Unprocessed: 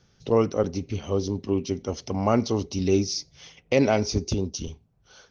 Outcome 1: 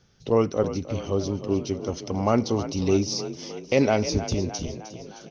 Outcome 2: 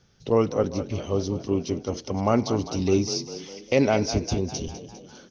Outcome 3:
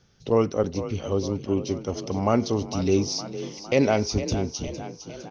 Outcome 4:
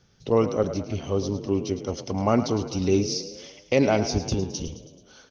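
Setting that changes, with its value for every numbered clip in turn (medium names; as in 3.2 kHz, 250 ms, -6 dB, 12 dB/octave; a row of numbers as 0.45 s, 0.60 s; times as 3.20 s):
frequency-shifting echo, time: 308 ms, 201 ms, 458 ms, 108 ms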